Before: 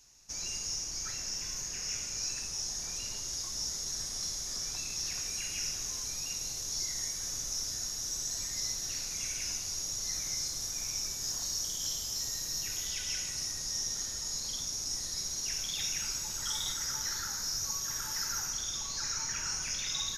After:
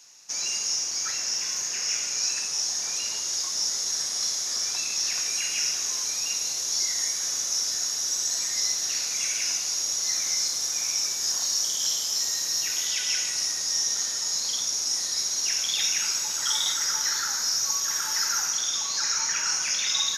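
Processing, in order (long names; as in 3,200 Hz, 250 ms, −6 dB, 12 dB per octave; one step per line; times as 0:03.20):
meter weighting curve A
level +9 dB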